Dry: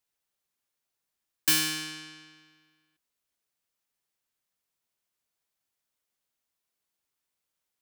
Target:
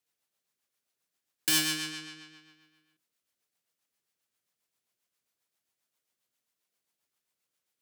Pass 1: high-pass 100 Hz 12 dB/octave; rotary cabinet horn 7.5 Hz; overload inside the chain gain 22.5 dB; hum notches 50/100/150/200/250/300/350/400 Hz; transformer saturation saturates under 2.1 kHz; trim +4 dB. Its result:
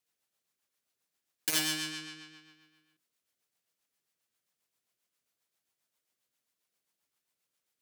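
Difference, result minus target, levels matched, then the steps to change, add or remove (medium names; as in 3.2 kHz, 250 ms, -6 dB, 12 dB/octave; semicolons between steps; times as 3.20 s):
overload inside the chain: distortion +22 dB
change: overload inside the chain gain 15 dB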